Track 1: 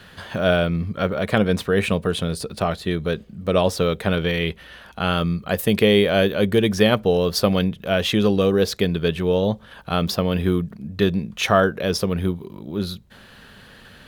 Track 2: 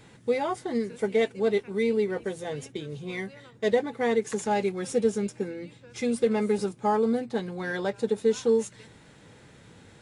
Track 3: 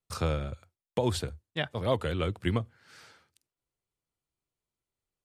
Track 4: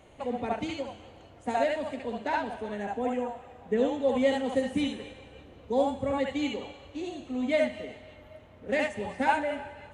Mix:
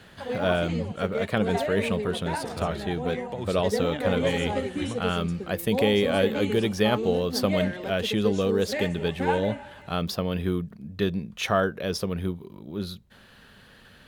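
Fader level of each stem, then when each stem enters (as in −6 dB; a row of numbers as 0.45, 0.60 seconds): −6.5, −7.0, −7.0, −3.0 decibels; 0.00, 0.00, 2.35, 0.00 seconds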